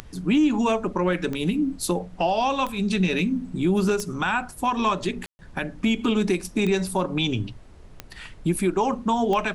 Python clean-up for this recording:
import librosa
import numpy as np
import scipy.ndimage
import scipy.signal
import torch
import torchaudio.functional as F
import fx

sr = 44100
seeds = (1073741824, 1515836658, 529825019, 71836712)

y = fx.fix_declick_ar(x, sr, threshold=10.0)
y = fx.fix_ambience(y, sr, seeds[0], print_start_s=7.59, print_end_s=8.09, start_s=5.26, end_s=5.39)
y = fx.noise_reduce(y, sr, print_start_s=7.59, print_end_s=8.09, reduce_db=26.0)